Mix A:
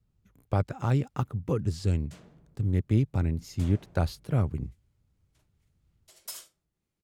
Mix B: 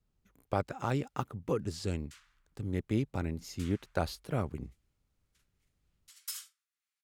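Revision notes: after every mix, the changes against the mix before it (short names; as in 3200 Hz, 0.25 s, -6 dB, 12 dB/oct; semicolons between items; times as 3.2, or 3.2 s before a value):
speech: add bell 100 Hz -11 dB 2 oct; background: add steep high-pass 1200 Hz 36 dB/oct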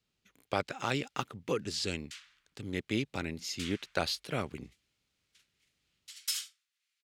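master: add weighting filter D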